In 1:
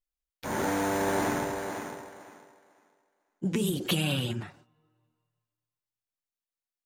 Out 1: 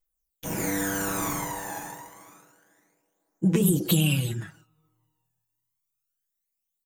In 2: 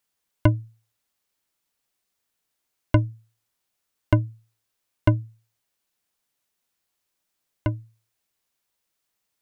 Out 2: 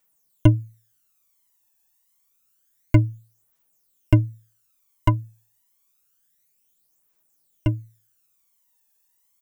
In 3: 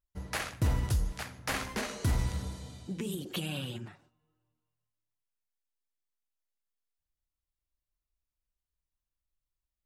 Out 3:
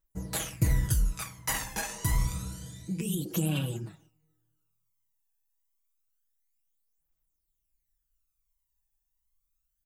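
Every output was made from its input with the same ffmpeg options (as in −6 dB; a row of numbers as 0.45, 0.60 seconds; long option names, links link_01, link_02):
-af "aexciter=amount=2.9:drive=4.6:freq=6200,aecho=1:1:6.2:0.58,aphaser=in_gain=1:out_gain=1:delay=1.2:decay=0.63:speed=0.28:type=triangular,volume=-3dB"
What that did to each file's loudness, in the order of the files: +4.0, +2.5, +3.0 LU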